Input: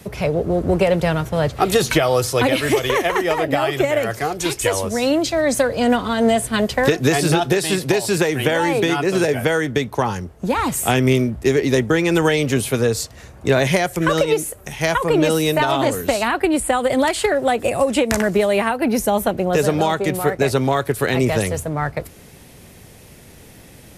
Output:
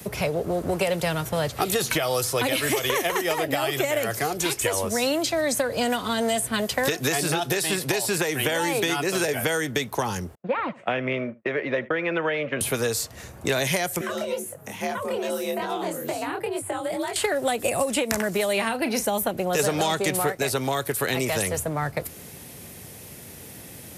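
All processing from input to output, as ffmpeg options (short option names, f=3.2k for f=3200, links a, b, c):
-filter_complex "[0:a]asettb=1/sr,asplit=3[a][b][c];[a]atrim=end=10.354[d];[b]atrim=start=10.35:end=12.61,asetpts=PTS-STARTPTS,afade=t=in:d=0.004:c=qsin,afade=t=out:st=2.256:d=0.004:c=qsin,agate=range=-40dB:threshold=-23dB:ratio=16:release=100:detection=peak,highpass=250,equalizer=f=270:t=q:w=4:g=-7,equalizer=f=400:t=q:w=4:g=-9,equalizer=f=570:t=q:w=4:g=7,equalizer=f=830:t=q:w=4:g=-6,lowpass=f=2.4k:w=0.5412,lowpass=f=2.4k:w=1.3066,aecho=1:1:77:0.075,atrim=end_sample=99666[e];[c]atrim=start=12.606[f];[d][e]acrossfade=d=0.004:c1=hsin:c2=qsin[g];[g][f]acrossfade=d=0.004:c1=qsin:c2=hsin,asettb=1/sr,asplit=3[h][i][j];[h]atrim=end=14.014[k];[i]atrim=start=14.01:end=17.16,asetpts=PTS-STARTPTS,afade=t=in:d=0.004:c=qsin,afade=t=out:st=3.146:d=0.004:c=qsin,acrossover=split=200|470|2100[l][m][n][o];[l]acompressor=threshold=-39dB:ratio=3[p];[m]acompressor=threshold=-28dB:ratio=3[q];[n]acompressor=threshold=-31dB:ratio=3[r];[o]acompressor=threshold=-41dB:ratio=3[s];[p][q][r][s]amix=inputs=4:normalize=0,flanger=delay=18.5:depth=7.9:speed=2.3,afreqshift=56[t];[j]atrim=start=17.156[u];[k][t]acrossfade=d=0.004:c1=hsin:c2=qsin[v];[v][u]acrossfade=d=0.004:c1=qsin:c2=hsin,asettb=1/sr,asplit=3[w][x][y];[w]atrim=end=18.534[z];[x]atrim=start=18.53:end=19.06,asetpts=PTS-STARTPTS,afade=t=in:d=0.004:c=qsin,afade=t=out:st=0.526:d=0.004:c=qsin,lowpass=4.6k,aemphasis=mode=production:type=50fm,asplit=2[aa][ab];[ab]adelay=36,volume=-12dB[ac];[aa][ac]amix=inputs=2:normalize=0,atrim=end_sample=23373[ad];[y]atrim=start=19.056[ae];[z][ad]acrossfade=d=0.004:c1=hsin:c2=qsin[af];[af][ae]acrossfade=d=0.004:c1=qsin:c2=hsin,asettb=1/sr,asplit=3[ag][ah][ai];[ag]atrim=end=19.594[aj];[ah]atrim=start=19.59:end=20.32,asetpts=PTS-STARTPTS,afade=t=in:d=0.004:c=qsin,afade=t=out:st=0.726:d=0.004:c=qsin,lowpass=11k,acontrast=55[ak];[ai]atrim=start=20.316[al];[aj][ak]acrossfade=d=0.004:c1=hsin:c2=qsin[am];[am][al]acrossfade=d=0.004:c1=qsin:c2=hsin,highpass=78,highshelf=f=9.6k:g=11.5,acrossover=split=590|2900[an][ao][ap];[an]acompressor=threshold=-28dB:ratio=4[aq];[ao]acompressor=threshold=-27dB:ratio=4[ar];[ap]acompressor=threshold=-27dB:ratio=4[as];[aq][ar][as]amix=inputs=3:normalize=0"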